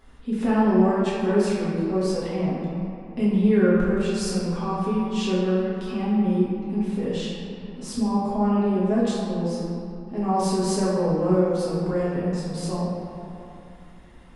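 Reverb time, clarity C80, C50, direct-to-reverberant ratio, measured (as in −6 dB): 3.0 s, 0.0 dB, −2.0 dB, −9.0 dB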